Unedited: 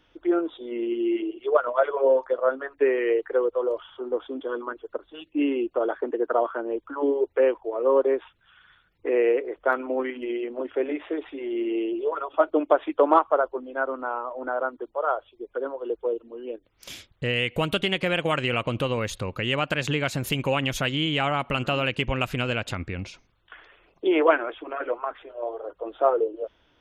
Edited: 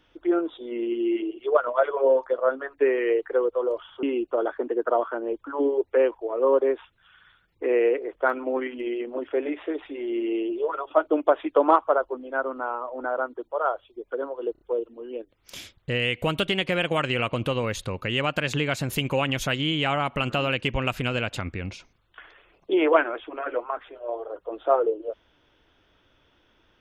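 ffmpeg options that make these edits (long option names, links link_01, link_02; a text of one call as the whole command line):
ffmpeg -i in.wav -filter_complex "[0:a]asplit=5[link_01][link_02][link_03][link_04][link_05];[link_01]atrim=end=4.032[link_06];[link_02]atrim=start=5.458:end=15.982[link_07];[link_03]atrim=start=15.948:end=15.982[link_08];[link_04]atrim=start=15.948:end=15.982[link_09];[link_05]atrim=start=15.948[link_10];[link_06][link_07]acrossfade=duration=0.004:curve1=hsin:curve2=hsin[link_11];[link_11][link_08]acrossfade=duration=0.004:curve1=hsin:curve2=hsin[link_12];[link_12][link_09]acrossfade=duration=0.004:curve1=hsin:curve2=hsin[link_13];[link_13][link_10]acrossfade=duration=0.004:curve1=hsin:curve2=hsin" out.wav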